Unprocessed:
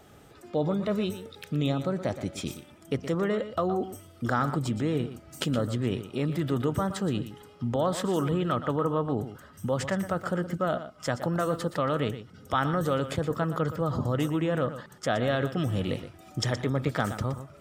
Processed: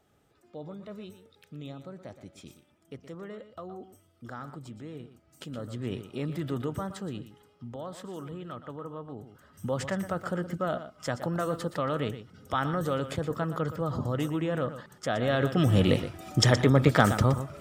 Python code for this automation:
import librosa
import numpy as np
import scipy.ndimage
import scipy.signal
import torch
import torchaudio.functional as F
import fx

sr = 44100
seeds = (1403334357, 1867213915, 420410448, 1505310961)

y = fx.gain(x, sr, db=fx.line((5.37, -14.5), (5.93, -4.5), (6.55, -4.5), (7.83, -13.0), (9.22, -13.0), (9.66, -2.5), (15.13, -2.5), (15.78, 7.0)))